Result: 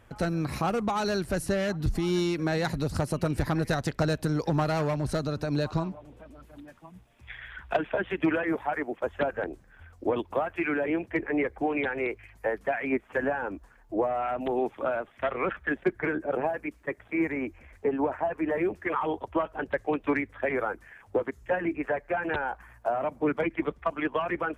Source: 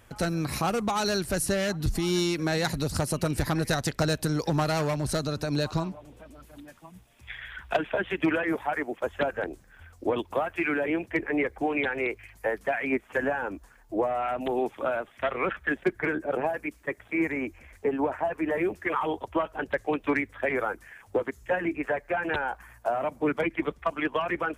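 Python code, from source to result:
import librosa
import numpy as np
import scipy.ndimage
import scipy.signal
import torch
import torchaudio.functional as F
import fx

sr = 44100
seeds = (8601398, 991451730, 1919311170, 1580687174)

y = fx.high_shelf(x, sr, hz=3500.0, db=-10.5)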